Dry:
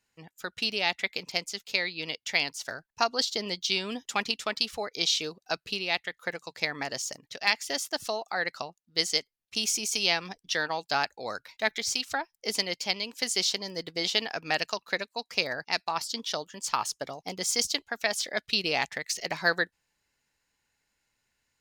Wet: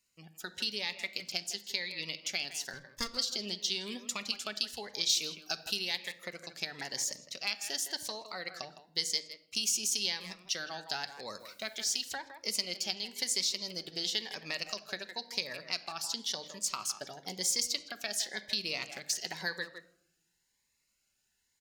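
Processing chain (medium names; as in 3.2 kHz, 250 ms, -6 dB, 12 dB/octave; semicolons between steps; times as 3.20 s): 2.73–3.17 s: comb filter that takes the minimum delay 0.61 ms; speakerphone echo 160 ms, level -12 dB; compression 2:1, threshold -32 dBFS, peak gain reduction 8 dB; 5.09–6.19 s: treble shelf 6.9 kHz +12 dB; on a send at -10.5 dB: high-pass 43 Hz + reverberation RT60 0.80 s, pre-delay 5 ms; 11.39–12.13 s: on the sum: added noise white -68 dBFS; treble shelf 3.1 kHz +9.5 dB; Shepard-style phaser rising 0.96 Hz; trim -5.5 dB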